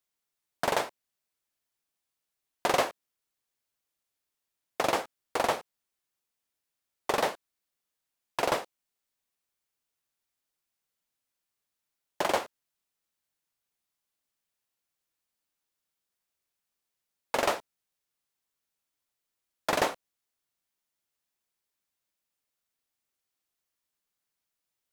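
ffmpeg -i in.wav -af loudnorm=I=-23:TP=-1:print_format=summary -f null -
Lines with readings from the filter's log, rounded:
Input Integrated:    -30.9 LUFS
Input True Peak:     -11.8 dBTP
Input LRA:             4.2 LU
Input Threshold:     -41.5 LUFS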